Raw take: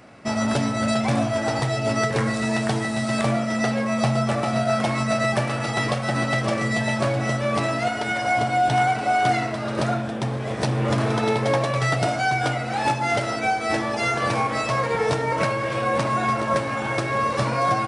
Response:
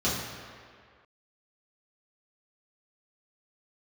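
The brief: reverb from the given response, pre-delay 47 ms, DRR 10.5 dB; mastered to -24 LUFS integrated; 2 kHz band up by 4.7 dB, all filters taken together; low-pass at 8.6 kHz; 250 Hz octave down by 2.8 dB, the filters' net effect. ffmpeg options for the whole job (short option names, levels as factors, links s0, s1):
-filter_complex "[0:a]lowpass=8600,equalizer=f=250:t=o:g=-3.5,equalizer=f=2000:t=o:g=5.5,asplit=2[s0][s1];[1:a]atrim=start_sample=2205,adelay=47[s2];[s1][s2]afir=irnorm=-1:irlink=0,volume=0.075[s3];[s0][s3]amix=inputs=2:normalize=0,volume=0.708"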